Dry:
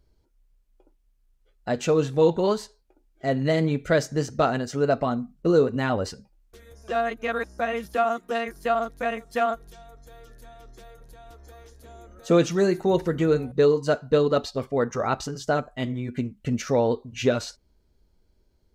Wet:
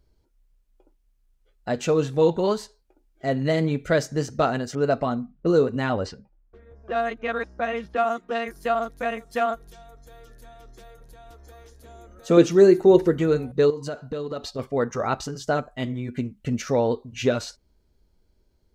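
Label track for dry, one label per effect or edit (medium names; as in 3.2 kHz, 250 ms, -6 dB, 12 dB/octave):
4.750000	8.420000	level-controlled noise filter closes to 1.2 kHz, open at -18.5 dBFS
12.370000	13.140000	peaking EQ 370 Hz +9 dB
13.700000	14.590000	compression, threshold -27 dBFS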